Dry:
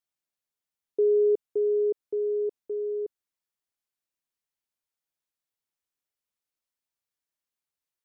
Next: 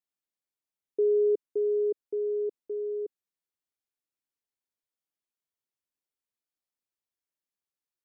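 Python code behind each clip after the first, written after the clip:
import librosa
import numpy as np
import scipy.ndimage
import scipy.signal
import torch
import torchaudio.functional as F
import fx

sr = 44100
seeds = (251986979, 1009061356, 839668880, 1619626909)

y = fx.peak_eq(x, sr, hz=320.0, db=5.0, octaves=1.4)
y = F.gain(torch.from_numpy(y), -6.0).numpy()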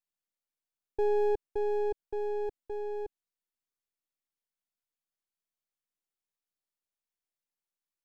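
y = np.where(x < 0.0, 10.0 ** (-12.0 / 20.0) * x, x)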